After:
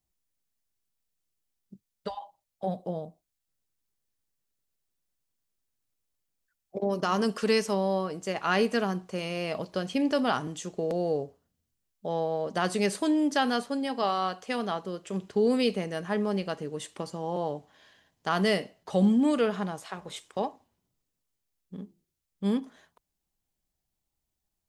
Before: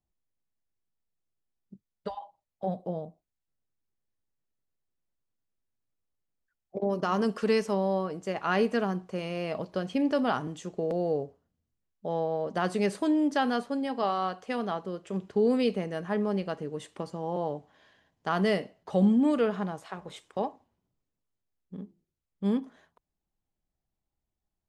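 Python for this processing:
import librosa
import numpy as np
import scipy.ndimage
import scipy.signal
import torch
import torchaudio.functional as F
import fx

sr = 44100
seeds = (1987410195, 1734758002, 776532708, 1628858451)

y = fx.high_shelf(x, sr, hz=2900.0, db=9.5)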